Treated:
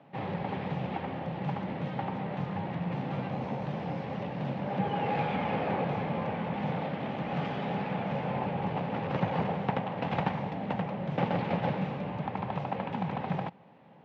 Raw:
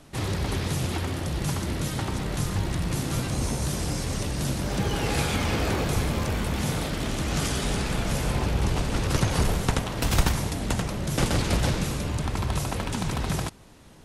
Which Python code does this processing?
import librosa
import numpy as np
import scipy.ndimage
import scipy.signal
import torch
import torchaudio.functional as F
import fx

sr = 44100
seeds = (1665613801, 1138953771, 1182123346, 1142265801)

y = fx.cabinet(x, sr, low_hz=130.0, low_slope=24, high_hz=2700.0, hz=(180.0, 340.0, 540.0, 810.0, 1400.0), db=(6, -5, 6, 10, -4))
y = F.gain(torch.from_numpy(y), -5.5).numpy()